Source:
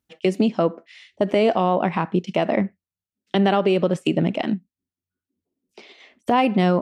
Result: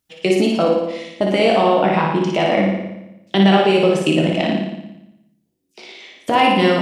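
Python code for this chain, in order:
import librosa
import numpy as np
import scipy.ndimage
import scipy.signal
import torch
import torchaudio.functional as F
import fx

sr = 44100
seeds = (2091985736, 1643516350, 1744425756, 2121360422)

p1 = fx.high_shelf(x, sr, hz=2300.0, db=8.5)
p2 = p1 + fx.room_flutter(p1, sr, wall_m=9.8, rt60_s=0.88, dry=0)
y = fx.room_shoebox(p2, sr, seeds[0], volume_m3=120.0, walls='mixed', distance_m=0.62)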